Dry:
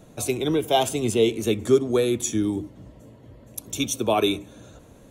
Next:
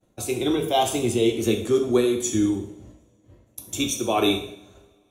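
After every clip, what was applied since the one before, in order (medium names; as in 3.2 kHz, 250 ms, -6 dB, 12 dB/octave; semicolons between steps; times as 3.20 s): tremolo 2.1 Hz, depth 35%; expander -39 dBFS; two-slope reverb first 0.61 s, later 2.4 s, from -27 dB, DRR 2.5 dB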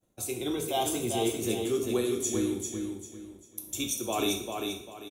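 treble shelf 7.8 kHz +11.5 dB; on a send: feedback delay 395 ms, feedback 31%, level -5 dB; on the sum: trim -9 dB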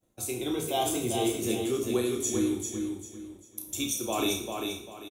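doubling 32 ms -7 dB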